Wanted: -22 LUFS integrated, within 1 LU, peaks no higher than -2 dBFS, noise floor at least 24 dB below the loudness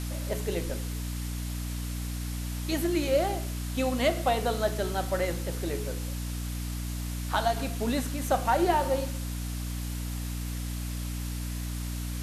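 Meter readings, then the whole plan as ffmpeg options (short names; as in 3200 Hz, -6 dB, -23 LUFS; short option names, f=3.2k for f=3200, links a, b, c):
hum 60 Hz; harmonics up to 300 Hz; hum level -31 dBFS; noise floor -34 dBFS; noise floor target -55 dBFS; loudness -30.5 LUFS; peak -13.5 dBFS; loudness target -22.0 LUFS
-> -af "bandreject=f=60:t=h:w=4,bandreject=f=120:t=h:w=4,bandreject=f=180:t=h:w=4,bandreject=f=240:t=h:w=4,bandreject=f=300:t=h:w=4"
-af "afftdn=nr=21:nf=-34"
-af "volume=8.5dB"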